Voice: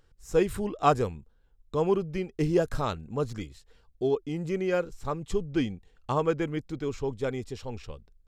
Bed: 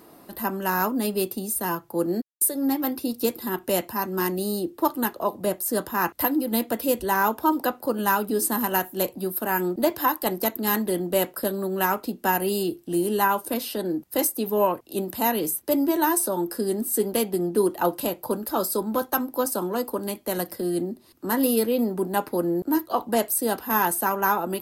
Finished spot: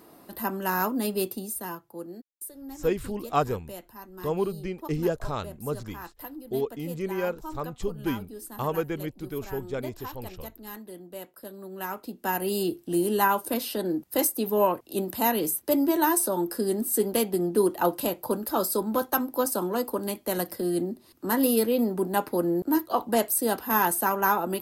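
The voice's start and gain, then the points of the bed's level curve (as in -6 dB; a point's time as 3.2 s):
2.50 s, -2.0 dB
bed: 1.28 s -2.5 dB
2.24 s -17.5 dB
11.33 s -17.5 dB
12.66 s -1 dB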